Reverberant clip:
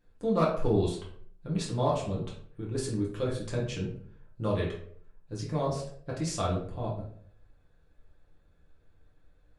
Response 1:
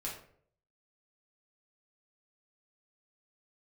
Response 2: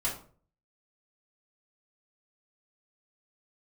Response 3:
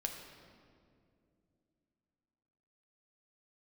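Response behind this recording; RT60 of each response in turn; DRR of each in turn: 1; 0.60, 0.45, 2.5 s; -4.5, -6.5, 2.5 dB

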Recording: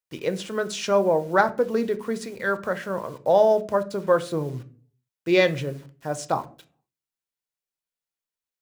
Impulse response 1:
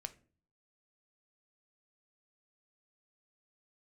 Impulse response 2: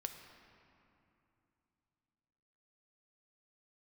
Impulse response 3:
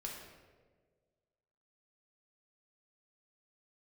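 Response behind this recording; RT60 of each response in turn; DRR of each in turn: 1; 0.40, 2.8, 1.6 s; 9.5, 5.0, -2.0 dB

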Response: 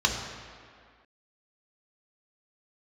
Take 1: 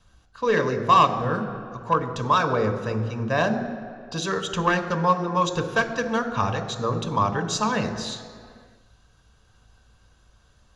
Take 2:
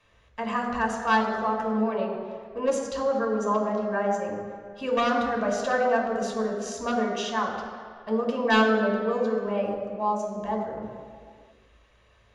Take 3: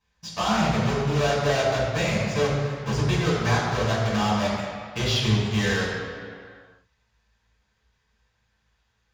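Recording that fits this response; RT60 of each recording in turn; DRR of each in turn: 2; 2.1, 2.1, 2.1 s; 8.0, 1.0, -7.0 dB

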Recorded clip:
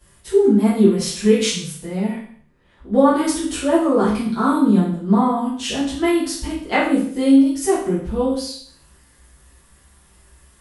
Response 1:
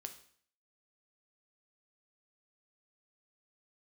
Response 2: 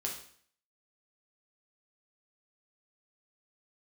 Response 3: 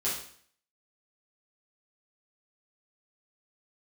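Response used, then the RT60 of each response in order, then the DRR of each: 3; 0.55, 0.55, 0.55 s; 6.0, -1.5, -9.5 dB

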